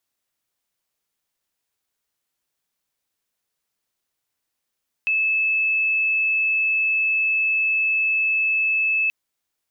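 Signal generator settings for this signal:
tone sine 2,610 Hz −17.5 dBFS 4.03 s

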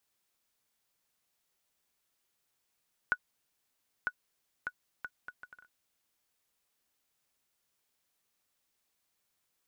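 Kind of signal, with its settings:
bouncing ball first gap 0.95 s, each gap 0.63, 1,470 Hz, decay 57 ms −16.5 dBFS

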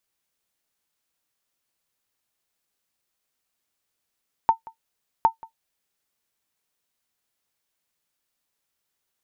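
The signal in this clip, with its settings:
ping with an echo 902 Hz, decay 0.11 s, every 0.76 s, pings 2, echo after 0.18 s, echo −23 dB −7.5 dBFS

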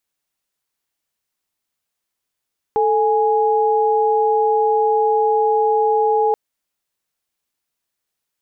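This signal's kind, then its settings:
held notes A4/G#5 sine, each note −16 dBFS 3.58 s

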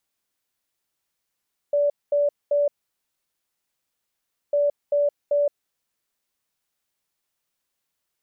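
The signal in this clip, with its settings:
beeps in groups sine 579 Hz, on 0.17 s, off 0.22 s, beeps 3, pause 1.85 s, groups 2, −17 dBFS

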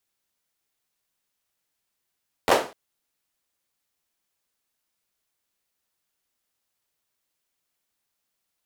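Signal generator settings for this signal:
synth clap length 0.25 s, apart 11 ms, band 560 Hz, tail 0.36 s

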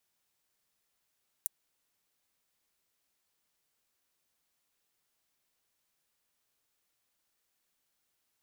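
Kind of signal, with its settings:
closed synth hi-hat, high-pass 8,800 Hz, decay 0.02 s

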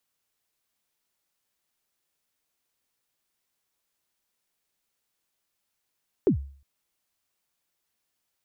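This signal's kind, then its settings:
synth kick length 0.36 s, from 450 Hz, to 69 Hz, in 102 ms, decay 0.47 s, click off, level −14 dB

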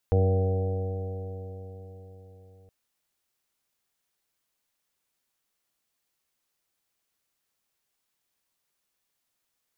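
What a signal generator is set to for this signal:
stiff-string partials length 2.57 s, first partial 93.5 Hz, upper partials −12/−16/−17/−5/−17/−19/−17 dB, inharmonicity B 0.001, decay 4.44 s, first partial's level −19 dB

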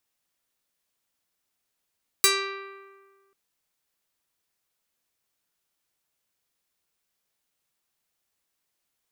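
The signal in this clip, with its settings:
Karplus-Strong string G4, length 1.09 s, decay 1.60 s, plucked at 0.46, medium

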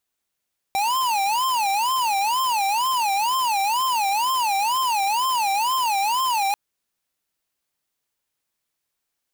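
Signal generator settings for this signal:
siren wail 781–1,050 Hz 2.1 per second square −21.5 dBFS 5.79 s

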